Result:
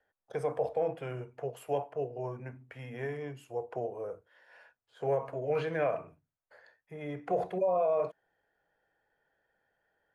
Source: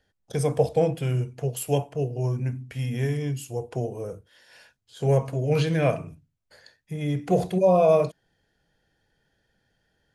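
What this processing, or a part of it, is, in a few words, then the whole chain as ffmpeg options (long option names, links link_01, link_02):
DJ mixer with the lows and highs turned down: -filter_complex "[0:a]acrossover=split=440 2000:gain=0.126 1 0.0794[link_01][link_02][link_03];[link_01][link_02][link_03]amix=inputs=3:normalize=0,alimiter=limit=-21dB:level=0:latency=1:release=53"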